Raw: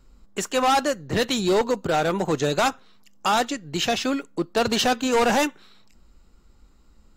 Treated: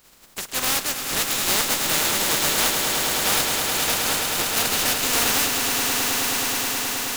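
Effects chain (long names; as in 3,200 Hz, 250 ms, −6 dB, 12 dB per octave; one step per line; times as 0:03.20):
compressing power law on the bin magnitudes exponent 0.21
echo that builds up and dies away 106 ms, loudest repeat 8, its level −8 dB
level −3 dB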